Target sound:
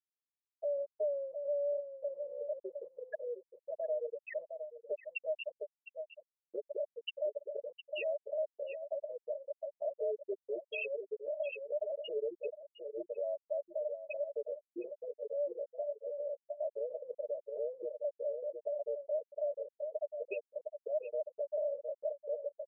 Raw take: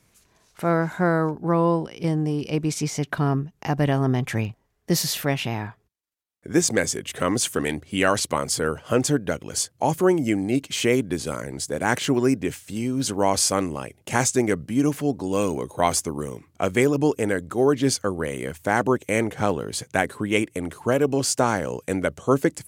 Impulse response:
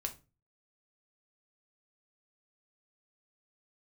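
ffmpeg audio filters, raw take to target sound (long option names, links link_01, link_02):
-filter_complex "[0:a]asplit=3[link_01][link_02][link_03];[link_01]bandpass=frequency=530:width_type=q:width=8,volume=0dB[link_04];[link_02]bandpass=frequency=1840:width_type=q:width=8,volume=-6dB[link_05];[link_03]bandpass=frequency=2480:width_type=q:width=8,volume=-9dB[link_06];[link_04][link_05][link_06]amix=inputs=3:normalize=0,afreqshift=69,acompressor=threshold=-39dB:ratio=4,highpass=180,equalizer=frequency=510:width_type=q:width=4:gain=6,equalizer=frequency=1100:width_type=q:width=4:gain=-9,equalizer=frequency=2700:width_type=q:width=4:gain=9,lowpass=frequency=6800:width=0.5412,lowpass=frequency=6800:width=1.3066,afftfilt=real='re*gte(hypot(re,im),0.0708)':imag='im*gte(hypot(re,im),0.0708)':win_size=1024:overlap=0.75,aecho=1:1:709:0.211,alimiter=level_in=15.5dB:limit=-24dB:level=0:latency=1:release=43,volume=-15.5dB,aecho=1:1:4.8:0.88,volume=7dB"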